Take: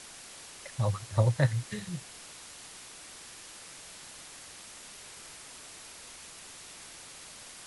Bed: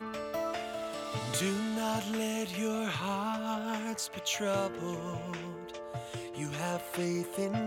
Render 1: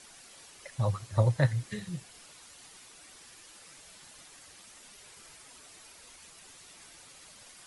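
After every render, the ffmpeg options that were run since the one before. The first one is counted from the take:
-af "afftdn=nr=8:nf=-49"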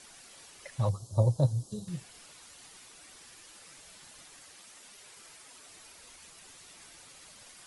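-filter_complex "[0:a]asettb=1/sr,asplit=3[a][b][c];[a]atrim=end=0.894[d];[b]atrim=start=0.89:end=1.88,asetpts=PTS-STARTPTS,afade=t=in:d=0.004:c=qsin,afade=t=out:st=0.986:d=0.004:c=qsin,asuperstop=centerf=2000:order=4:qfactor=0.52[e];[c]atrim=start=1.876[f];[d][e]acrossfade=d=0.004:c1=hsin:c2=qsin[g];[g][f]acrossfade=d=0.004:c1=qsin:c2=hsin,asettb=1/sr,asplit=3[h][i][j];[h]atrim=end=4.434[k];[i]atrim=start=4.43:end=5.67,asetpts=PTS-STARTPTS,afade=t=in:d=0.004:c=qsin,afade=t=out:st=1.236:d=0.004:c=qsin,lowshelf=f=140:g=-9[l];[j]atrim=start=5.666[m];[k][l]acrossfade=d=0.004:c1=hsin:c2=qsin[n];[n][m]acrossfade=d=0.004:c1=qsin:c2=hsin"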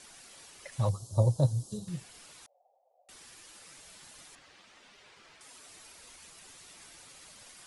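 -filter_complex "[0:a]asettb=1/sr,asplit=3[a][b][c];[a]atrim=end=0.724[d];[b]atrim=start=0.72:end=1.78,asetpts=PTS-STARTPTS,afade=t=in:d=0.004:c=qsin,afade=t=out:st=1.056:d=0.004:c=qsin,highshelf=f=5.1k:g=4[e];[c]atrim=start=1.776[f];[d][e]acrossfade=d=0.004:c1=hsin:c2=qsin[g];[g][f]acrossfade=d=0.004:c1=qsin:c2=hsin,asettb=1/sr,asplit=3[h][i][j];[h]atrim=end=2.464[k];[i]atrim=start=2.46:end=3.09,asetpts=PTS-STARTPTS,afade=t=in:d=0.004:c=qsin,afade=t=out:st=0.626:d=0.004:c=qsin,asuperpass=centerf=640:order=8:qfactor=2.3[l];[j]atrim=start=3.086[m];[k][l]acrossfade=d=0.004:c1=hsin:c2=qsin[n];[n][m]acrossfade=d=0.004:c1=qsin:c2=hsin,asettb=1/sr,asplit=3[o][p][q];[o]atrim=end=4.354[r];[p]atrim=start=4.35:end=5.41,asetpts=PTS-STARTPTS,afade=t=in:d=0.004:c=qsin,afade=t=out:st=1.056:d=0.004:c=qsin,lowpass=3.8k[s];[q]atrim=start=5.406[t];[r][s]acrossfade=d=0.004:c1=hsin:c2=qsin[u];[u][t]acrossfade=d=0.004:c1=qsin:c2=hsin"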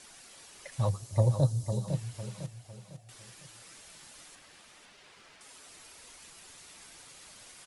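-af "aecho=1:1:503|1006|1509|2012:0.398|0.151|0.0575|0.0218"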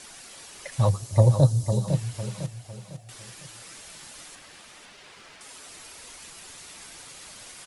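-af "volume=7.5dB"

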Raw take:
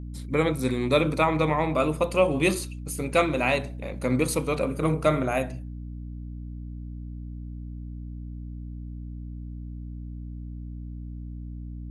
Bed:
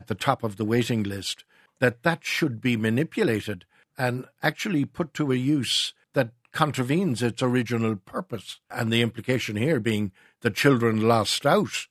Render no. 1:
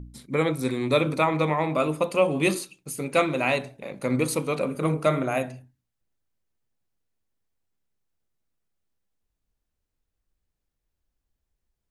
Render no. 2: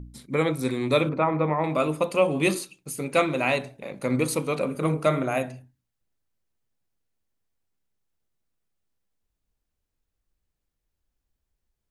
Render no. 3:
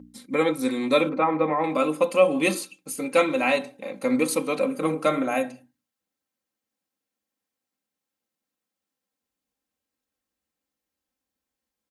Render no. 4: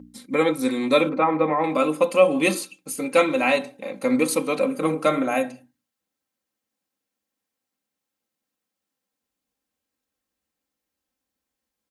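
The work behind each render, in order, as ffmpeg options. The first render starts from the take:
-af "bandreject=f=60:t=h:w=4,bandreject=f=120:t=h:w=4,bandreject=f=180:t=h:w=4,bandreject=f=240:t=h:w=4,bandreject=f=300:t=h:w=4"
-filter_complex "[0:a]asettb=1/sr,asplit=3[a][b][c];[a]atrim=end=1.094[d];[b]atrim=start=1.09:end=1.64,asetpts=PTS-STARTPTS,afade=t=in:d=0.004:c=qsin,afade=t=out:st=0.546:d=0.004:c=qsin,lowpass=1.6k[e];[c]atrim=start=1.636[f];[d][e]acrossfade=d=0.004:c1=hsin:c2=qsin[g];[g][f]acrossfade=d=0.004:c1=qsin:c2=hsin"
-af "highpass=180,aecho=1:1:3.8:0.63"
-af "volume=2dB"

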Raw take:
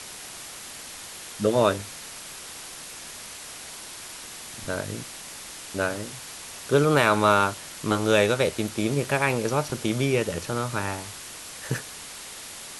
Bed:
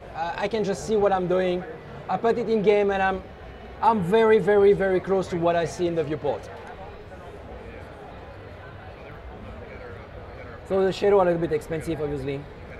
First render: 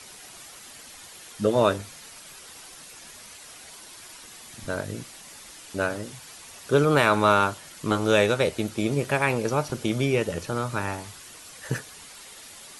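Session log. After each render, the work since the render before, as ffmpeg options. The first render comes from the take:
-af "afftdn=nr=8:nf=-41"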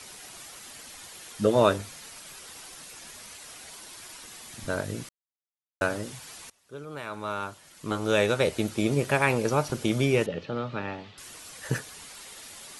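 -filter_complex "[0:a]asettb=1/sr,asplit=3[a][b][c];[a]atrim=end=10.264[d];[b]atrim=start=10.26:end=11.18,asetpts=PTS-STARTPTS,afade=t=in:d=0.004:c=qsin,afade=t=out:st=0.916:d=0.004:c=qsin,highpass=150,equalizer=f=340:t=q:w=4:g=-4,equalizer=f=690:t=q:w=4:g=-4,equalizer=f=1k:t=q:w=4:g=-9,equalizer=f=1.5k:t=q:w=4:g=-7,equalizer=f=2.2k:t=q:w=4:g=-4,lowpass=f=3.6k:w=0.5412,lowpass=f=3.6k:w=1.3066[e];[c]atrim=start=11.176[f];[d][e]acrossfade=d=0.004:c1=hsin:c2=qsin[g];[g][f]acrossfade=d=0.004:c1=qsin:c2=hsin,asplit=4[h][i][j][k];[h]atrim=end=5.09,asetpts=PTS-STARTPTS,afade=t=out:st=5.086:d=0.004:c=hsin[l];[i]atrim=start=5.09:end=5.81,asetpts=PTS-STARTPTS,volume=0[m];[j]atrim=start=5.81:end=6.5,asetpts=PTS-STARTPTS,afade=t=in:d=0.004:c=hsin,afade=t=out:st=0.686:d=0.004:c=hsin:silence=0.0707946[n];[k]atrim=start=6.5,asetpts=PTS-STARTPTS,afade=t=in:d=2.07:c=qua:silence=0.0707946[o];[l][m][n][o]concat=n=4:v=0:a=1"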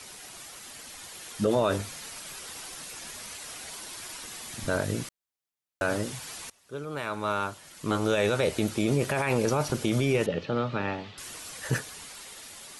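-af "dynaudnorm=f=240:g=11:m=4dB,alimiter=limit=-15.5dB:level=0:latency=1:release=19"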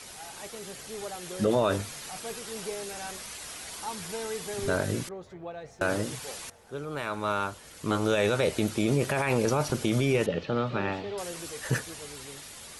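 -filter_complex "[1:a]volume=-18dB[a];[0:a][a]amix=inputs=2:normalize=0"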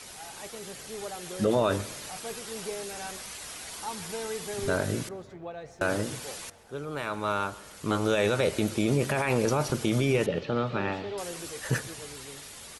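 -filter_complex "[0:a]asplit=2[a][b];[b]adelay=135,lowpass=f=3.4k:p=1,volume=-19dB,asplit=2[c][d];[d]adelay=135,lowpass=f=3.4k:p=1,volume=0.5,asplit=2[e][f];[f]adelay=135,lowpass=f=3.4k:p=1,volume=0.5,asplit=2[g][h];[h]adelay=135,lowpass=f=3.4k:p=1,volume=0.5[i];[a][c][e][g][i]amix=inputs=5:normalize=0"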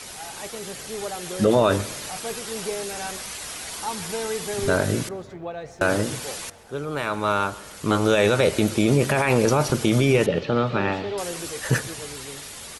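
-af "volume=6.5dB"

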